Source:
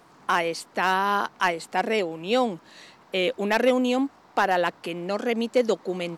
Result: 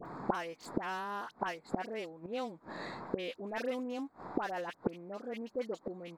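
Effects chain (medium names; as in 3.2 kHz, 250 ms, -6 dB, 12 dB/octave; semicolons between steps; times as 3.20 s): local Wiener filter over 15 samples; phase dispersion highs, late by 57 ms, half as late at 1.5 kHz; inverted gate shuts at -28 dBFS, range -26 dB; trim +10.5 dB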